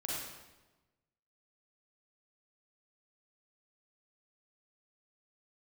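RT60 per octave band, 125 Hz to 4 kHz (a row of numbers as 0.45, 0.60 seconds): 1.4, 1.3, 1.2, 1.1, 0.95, 0.90 seconds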